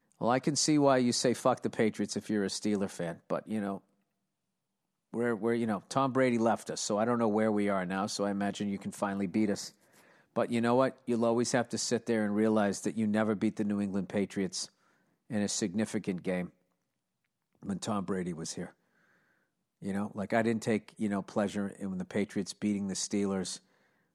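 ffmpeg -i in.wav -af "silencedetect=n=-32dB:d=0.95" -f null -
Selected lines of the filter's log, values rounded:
silence_start: 3.75
silence_end: 5.14 | silence_duration: 1.39
silence_start: 16.44
silence_end: 17.69 | silence_duration: 1.25
silence_start: 18.63
silence_end: 19.85 | silence_duration: 1.22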